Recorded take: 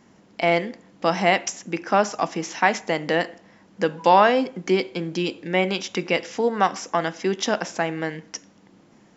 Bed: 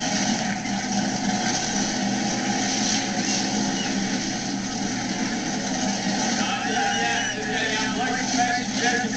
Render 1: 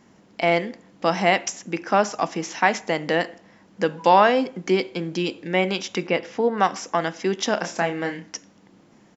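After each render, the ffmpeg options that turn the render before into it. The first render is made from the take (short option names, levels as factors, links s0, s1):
-filter_complex "[0:a]asettb=1/sr,asplit=3[s0][s1][s2];[s0]atrim=end=6.074[s3];[s1]atrim=start=6.07:end=6.58,asetpts=PTS-STARTPTS,afade=t=in:d=0.004:c=qsin,afade=t=out:st=0.506:d=0.004:c=qsin,aemphasis=mode=reproduction:type=75fm[s4];[s2]atrim=start=6.576[s5];[s3][s4]acrossfade=d=0.004:c1=hsin:c2=qsin[s6];[s6][s5]acrossfade=d=0.004:c1=qsin:c2=hsin,asplit=3[s7][s8][s9];[s7]afade=t=out:st=7.56:d=0.02[s10];[s8]asplit=2[s11][s12];[s12]adelay=29,volume=0.531[s13];[s11][s13]amix=inputs=2:normalize=0,afade=t=in:st=7.56:d=0.02,afade=t=out:st=8.3:d=0.02[s14];[s9]afade=t=in:st=8.3:d=0.02[s15];[s10][s14][s15]amix=inputs=3:normalize=0"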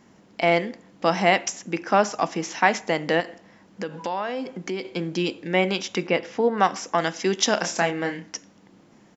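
-filter_complex "[0:a]asettb=1/sr,asplit=3[s0][s1][s2];[s0]atrim=end=3.204[s3];[s1]atrim=start=3.2:end=4.85,asetpts=PTS-STARTPTS,afade=t=in:d=0.004:c=qsin,afade=t=out:st=1.646:d=0.004:c=qsin,acompressor=threshold=0.0398:ratio=3:attack=3.2:release=140:knee=1:detection=peak[s4];[s2]atrim=start=4.846[s5];[s3][s4]acrossfade=d=0.004:c1=hsin:c2=qsin[s6];[s6][s5]acrossfade=d=0.004:c1=qsin:c2=hsin,asettb=1/sr,asplit=3[s7][s8][s9];[s7]atrim=end=6.984[s10];[s8]atrim=start=6.98:end=7.91,asetpts=PTS-STARTPTS,afade=t=in:d=0.004:c=qsin,afade=t=out:st=0.926:d=0.004:c=qsin,highshelf=f=3600:g=8.5[s11];[s9]atrim=start=7.906[s12];[s10][s11]acrossfade=d=0.004:c1=hsin:c2=qsin[s13];[s13][s12]acrossfade=d=0.004:c1=qsin:c2=hsin"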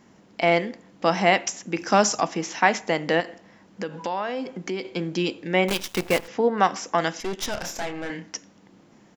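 -filter_complex "[0:a]asettb=1/sr,asplit=3[s0][s1][s2];[s0]atrim=end=1.784[s3];[s1]atrim=start=1.78:end=2.21,asetpts=PTS-STARTPTS,afade=t=in:d=0.004:c=qsin,afade=t=out:st=0.426:d=0.004:c=qsin,bass=f=250:g=5,treble=f=4000:g=13[s4];[s2]atrim=start=2.206[s5];[s3][s4]acrossfade=d=0.004:c1=hsin:c2=qsin[s6];[s6][s5]acrossfade=d=0.004:c1=qsin:c2=hsin,asettb=1/sr,asplit=3[s7][s8][s9];[s7]atrim=end=5.684[s10];[s8]atrim=start=5.68:end=6.28,asetpts=PTS-STARTPTS,afade=t=in:d=0.004:c=qsin,afade=t=out:st=0.596:d=0.004:c=qsin,acrusher=bits=5:dc=4:mix=0:aa=0.000001[s11];[s9]atrim=start=6.276[s12];[s10][s11]acrossfade=d=0.004:c1=hsin:c2=qsin[s13];[s13][s12]acrossfade=d=0.004:c1=qsin:c2=hsin,asettb=1/sr,asplit=3[s14][s15][s16];[s14]atrim=end=7.204[s17];[s15]atrim=start=7.2:end=8.1,asetpts=PTS-STARTPTS,afade=t=in:d=0.004:c=qsin,afade=t=out:st=0.896:d=0.004:c=qsin,aeval=exprs='(tanh(17.8*val(0)+0.75)-tanh(0.75))/17.8':c=same[s18];[s16]atrim=start=8.096[s19];[s17][s18]acrossfade=d=0.004:c1=hsin:c2=qsin[s20];[s20][s19]acrossfade=d=0.004:c1=qsin:c2=hsin"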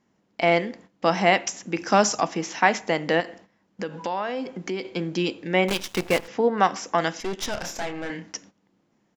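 -af "agate=range=0.2:threshold=0.00501:ratio=16:detection=peak,highshelf=f=12000:g=-6.5"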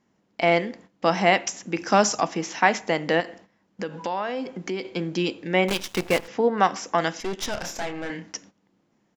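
-af anull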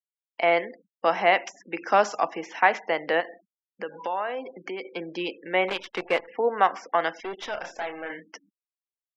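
-filter_complex "[0:a]afftfilt=real='re*gte(hypot(re,im),0.0126)':imag='im*gte(hypot(re,im),0.0126)':win_size=1024:overlap=0.75,acrossover=split=370 3500:gain=0.126 1 0.112[s0][s1][s2];[s0][s1][s2]amix=inputs=3:normalize=0"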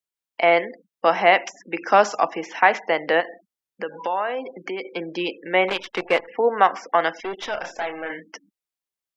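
-af "volume=1.68,alimiter=limit=0.794:level=0:latency=1"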